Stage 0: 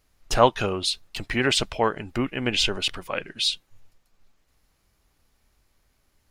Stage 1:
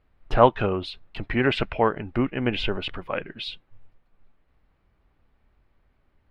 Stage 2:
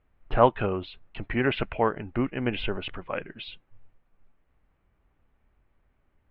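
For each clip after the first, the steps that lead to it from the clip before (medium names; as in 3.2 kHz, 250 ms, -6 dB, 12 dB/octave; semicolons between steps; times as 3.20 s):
time-frequency box 1.53–1.79 s, 1.3–2.9 kHz +6 dB; distance through air 480 m; trim +3 dB
low-pass 3.3 kHz 24 dB/octave; trim -3 dB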